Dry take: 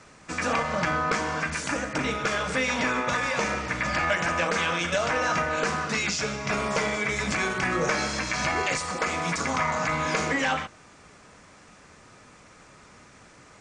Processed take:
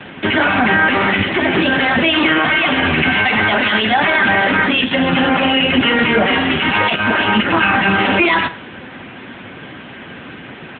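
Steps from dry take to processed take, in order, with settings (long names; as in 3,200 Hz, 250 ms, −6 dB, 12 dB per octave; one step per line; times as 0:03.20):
thirty-one-band graphic EQ 200 Hz +4 dB, 500 Hz −4 dB, 1,000 Hz −3 dB
speed change +26%
repeating echo 63 ms, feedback 44%, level −19.5 dB
boost into a limiter +23.5 dB
level −2.5 dB
AMR narrowband 10.2 kbit/s 8,000 Hz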